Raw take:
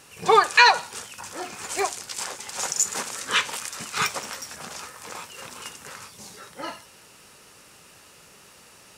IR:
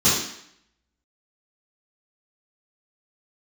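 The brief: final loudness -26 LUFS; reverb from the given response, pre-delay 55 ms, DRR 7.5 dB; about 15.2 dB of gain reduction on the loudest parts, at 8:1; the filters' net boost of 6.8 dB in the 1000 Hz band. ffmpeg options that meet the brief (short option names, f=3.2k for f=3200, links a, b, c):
-filter_complex "[0:a]equalizer=f=1k:t=o:g=8,acompressor=threshold=-21dB:ratio=8,asplit=2[a][b];[1:a]atrim=start_sample=2205,adelay=55[c];[b][c]afir=irnorm=-1:irlink=0,volume=-25.5dB[d];[a][d]amix=inputs=2:normalize=0,volume=2.5dB"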